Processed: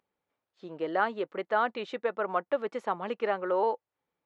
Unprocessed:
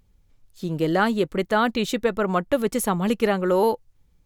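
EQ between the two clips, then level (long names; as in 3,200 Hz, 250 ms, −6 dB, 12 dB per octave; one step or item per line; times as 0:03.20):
high-pass filter 610 Hz 12 dB per octave
head-to-tape spacing loss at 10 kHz 40 dB
0.0 dB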